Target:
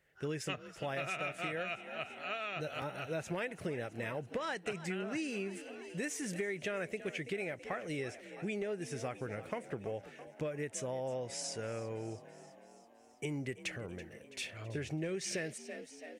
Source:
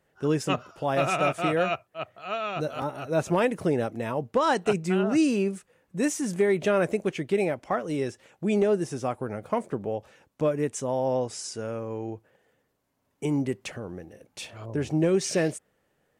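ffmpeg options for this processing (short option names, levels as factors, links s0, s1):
-filter_complex "[0:a]equalizer=f=250:t=o:w=1:g=-6,equalizer=f=1000:t=o:w=1:g=-8,equalizer=f=2000:t=o:w=1:g=9,asplit=7[s0][s1][s2][s3][s4][s5][s6];[s1]adelay=330,afreqshift=40,volume=0.126[s7];[s2]adelay=660,afreqshift=80,volume=0.0822[s8];[s3]adelay=990,afreqshift=120,volume=0.0531[s9];[s4]adelay=1320,afreqshift=160,volume=0.0347[s10];[s5]adelay=1650,afreqshift=200,volume=0.0224[s11];[s6]adelay=1980,afreqshift=240,volume=0.0146[s12];[s0][s7][s8][s9][s10][s11][s12]amix=inputs=7:normalize=0,acompressor=threshold=0.0282:ratio=6,volume=0.631"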